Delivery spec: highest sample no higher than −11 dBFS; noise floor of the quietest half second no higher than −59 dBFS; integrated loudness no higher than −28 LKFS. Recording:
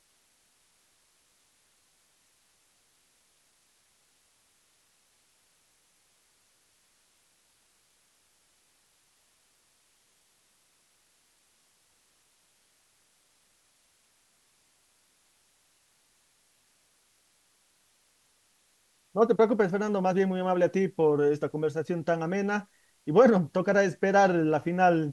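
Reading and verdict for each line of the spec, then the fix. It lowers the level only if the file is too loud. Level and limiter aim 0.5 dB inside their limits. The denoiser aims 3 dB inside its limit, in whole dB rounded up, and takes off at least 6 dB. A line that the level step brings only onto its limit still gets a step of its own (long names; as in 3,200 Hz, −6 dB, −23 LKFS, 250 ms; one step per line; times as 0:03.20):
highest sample −7.5 dBFS: out of spec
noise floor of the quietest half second −68 dBFS: in spec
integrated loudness −25.5 LKFS: out of spec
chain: level −3 dB
brickwall limiter −11.5 dBFS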